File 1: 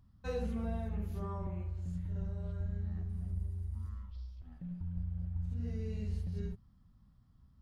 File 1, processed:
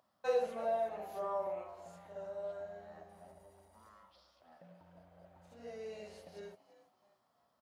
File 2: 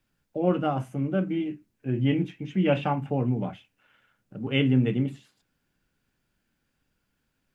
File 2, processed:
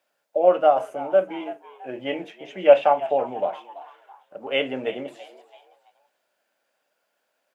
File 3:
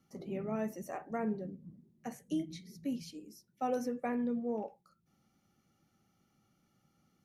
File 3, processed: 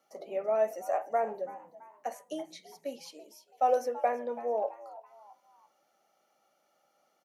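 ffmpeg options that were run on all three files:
-filter_complex "[0:a]highpass=f=610:t=q:w=4.2,asplit=4[a][b][c][d];[b]adelay=332,afreqshift=100,volume=-17dB[e];[c]adelay=664,afreqshift=200,volume=-25dB[f];[d]adelay=996,afreqshift=300,volume=-32.9dB[g];[a][e][f][g]amix=inputs=4:normalize=0,volume=2.5dB"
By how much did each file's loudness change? 0.0, +5.0, +5.5 LU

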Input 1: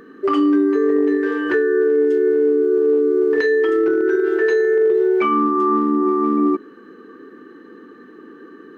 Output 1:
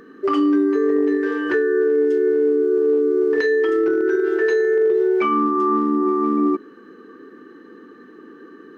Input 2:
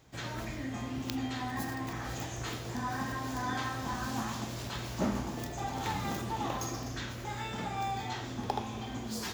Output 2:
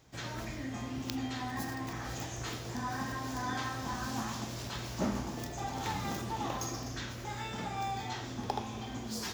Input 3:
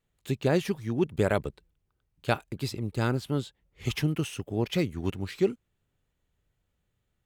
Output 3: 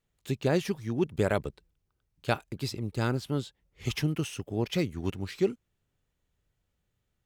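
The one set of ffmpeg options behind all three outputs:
-af "equalizer=f=5.5k:t=o:w=0.54:g=3.5,volume=-1.5dB"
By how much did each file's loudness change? -1.5, -1.5, -1.5 LU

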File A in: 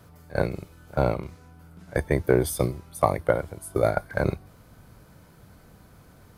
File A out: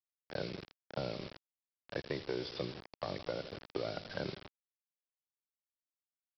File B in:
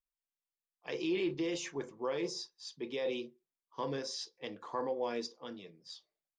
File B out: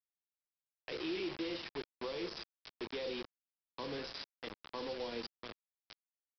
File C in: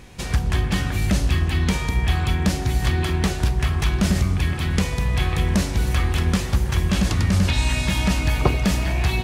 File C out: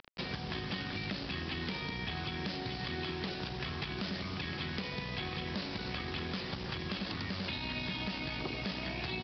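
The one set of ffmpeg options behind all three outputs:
-filter_complex "[0:a]aeval=exprs='(tanh(2.51*val(0)+0.55)-tanh(0.55))/2.51':c=same,asplit=2[a][b];[b]aecho=0:1:82|164|246|328|410:0.126|0.0755|0.0453|0.0272|0.0163[c];[a][c]amix=inputs=2:normalize=0,alimiter=limit=-14.5dB:level=0:latency=1:release=36,highpass=180,aresample=11025,acrusher=bits=6:mix=0:aa=0.000001,aresample=44100,acrossover=split=420|3000[d][e][f];[d]acompressor=threshold=-39dB:ratio=4[g];[e]acompressor=threshold=-44dB:ratio=4[h];[f]acompressor=threshold=-42dB:ratio=4[i];[g][h][i]amix=inputs=3:normalize=0"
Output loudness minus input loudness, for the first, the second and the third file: -15.5, -4.5, -16.0 LU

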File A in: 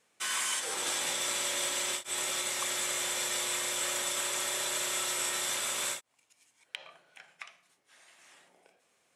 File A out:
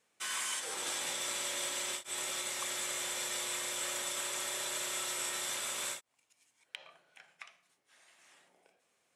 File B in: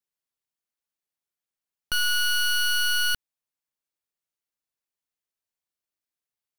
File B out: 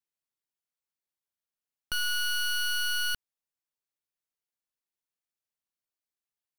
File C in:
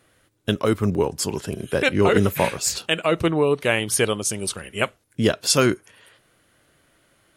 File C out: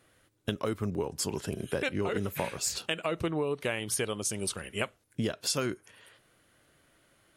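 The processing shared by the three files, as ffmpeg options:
-af "acompressor=threshold=-23dB:ratio=6,volume=-4.5dB"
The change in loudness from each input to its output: -4.5, -5.5, -11.0 LU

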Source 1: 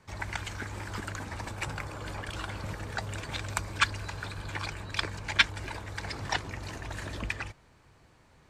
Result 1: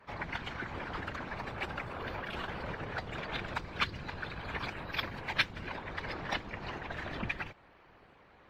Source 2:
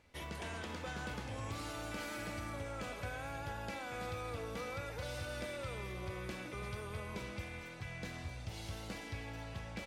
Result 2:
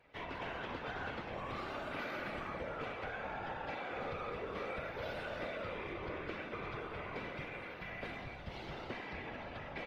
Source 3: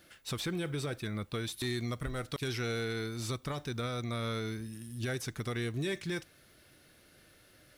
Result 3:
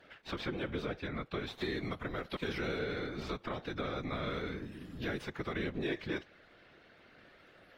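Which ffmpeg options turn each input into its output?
-filter_complex "[0:a]bass=f=250:g=-10,treble=f=4k:g=-14,afftfilt=real='hypot(re,im)*cos(2*PI*random(0))':imag='hypot(re,im)*sin(2*PI*random(1))':win_size=512:overlap=0.75,acrossover=split=320|3000[a][b][c];[b]acompressor=threshold=-50dB:ratio=2.5[d];[a][d][c]amix=inputs=3:normalize=0,acrossover=split=610|5500[e][f][g];[g]acrusher=samples=23:mix=1:aa=0.000001:lfo=1:lforange=36.8:lforate=0.35[h];[e][f][h]amix=inputs=3:normalize=0,volume=10dB" -ar 44100 -c:a aac -b:a 48k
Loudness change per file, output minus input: -4.0, +0.5, -2.0 LU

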